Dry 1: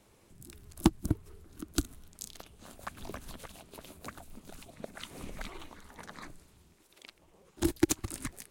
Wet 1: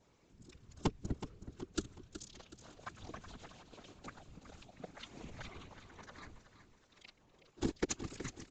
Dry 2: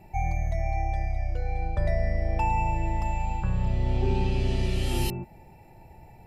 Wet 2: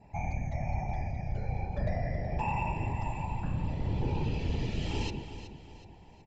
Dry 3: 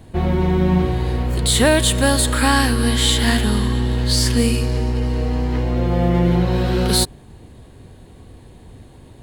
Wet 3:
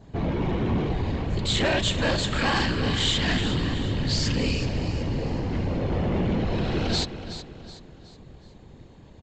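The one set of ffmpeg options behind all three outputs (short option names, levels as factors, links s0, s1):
-af "afftfilt=real='hypot(re,im)*cos(2*PI*random(0))':imag='hypot(re,im)*sin(2*PI*random(1))':win_size=512:overlap=0.75,aresample=16000,asoftclip=type=tanh:threshold=0.119,aresample=44100,aecho=1:1:372|744|1116|1488:0.266|0.114|0.0492|0.0212,adynamicequalizer=threshold=0.00447:dfrequency=2600:dqfactor=2:tfrequency=2600:tqfactor=2:attack=5:release=100:ratio=0.375:range=3:mode=boostabove:tftype=bell"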